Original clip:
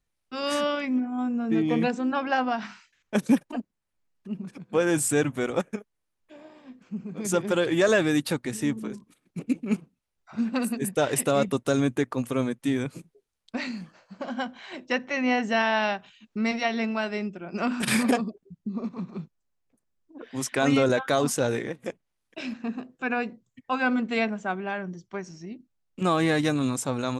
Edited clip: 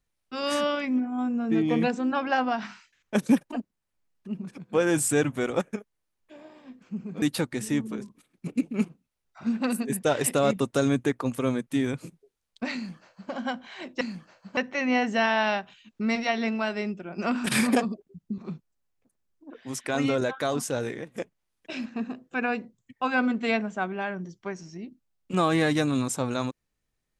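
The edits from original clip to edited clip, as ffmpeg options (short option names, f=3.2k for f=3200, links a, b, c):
-filter_complex "[0:a]asplit=7[a][b][c][d][e][f][g];[a]atrim=end=7.222[h];[b]atrim=start=8.138:end=14.932[i];[c]atrim=start=13.668:end=14.232[j];[d]atrim=start=14.928:end=18.742[k];[e]atrim=start=19.058:end=20.192[l];[f]atrim=start=20.188:end=21.752,asetpts=PTS-STARTPTS,volume=-4dB[m];[g]atrim=start=21.748[n];[h][i]acrossfade=d=0.004:c1=hsin:c2=hsin[o];[o][j]acrossfade=d=0.004:c1=hsin:c2=hsin[p];[p][k]acrossfade=d=0.004:c1=hsin:c2=hsin[q];[q][l]acrossfade=d=0.004:c1=hsin:c2=hsin[r];[r][m]acrossfade=d=0.004:c1=hsin:c2=hsin[s];[s][n]acrossfade=d=0.004:c1=hsin:c2=hsin"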